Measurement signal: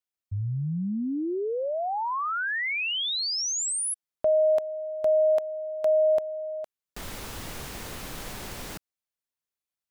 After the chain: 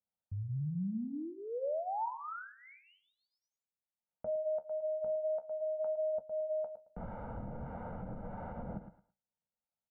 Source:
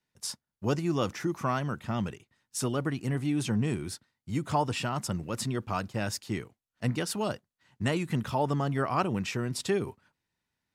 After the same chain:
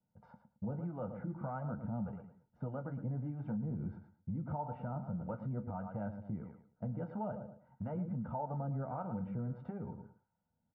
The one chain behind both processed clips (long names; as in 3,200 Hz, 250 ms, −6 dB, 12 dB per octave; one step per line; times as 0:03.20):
repeating echo 110 ms, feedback 22%, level −13 dB
downward compressor 10 to 1, threshold −36 dBFS
two-band tremolo in antiphase 1.6 Hz, depth 50%, crossover 590 Hz
low-pass filter 1,200 Hz 24 dB per octave
flanger 0.49 Hz, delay 9 ms, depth 8.8 ms, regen −54%
low-shelf EQ 230 Hz +7 dB
comb filter 1.4 ms, depth 81%
hollow resonant body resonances 210/340/490/910 Hz, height 7 dB
brickwall limiter −32 dBFS
low-shelf EQ 86 Hz −11 dB
level +3 dB